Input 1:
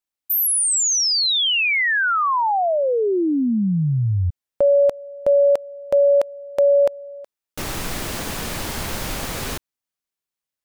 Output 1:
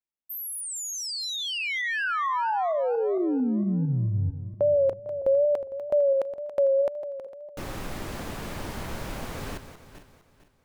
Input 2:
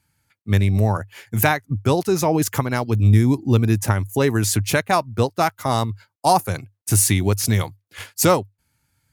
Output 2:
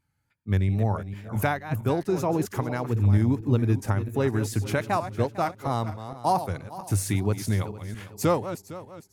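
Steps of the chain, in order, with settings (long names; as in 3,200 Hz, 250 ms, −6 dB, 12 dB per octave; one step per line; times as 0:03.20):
feedback delay that plays each chunk backwards 227 ms, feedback 53%, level −11 dB
tape wow and flutter 2.1 Hz 73 cents
high-shelf EQ 2,500 Hz −10 dB
level −6 dB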